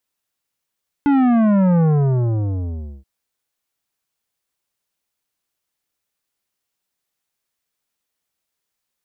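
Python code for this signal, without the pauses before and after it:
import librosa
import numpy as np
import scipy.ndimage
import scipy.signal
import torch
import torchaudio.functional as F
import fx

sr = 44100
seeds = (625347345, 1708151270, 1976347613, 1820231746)

y = fx.sub_drop(sr, level_db=-13, start_hz=290.0, length_s=1.98, drive_db=12, fade_s=1.23, end_hz=65.0)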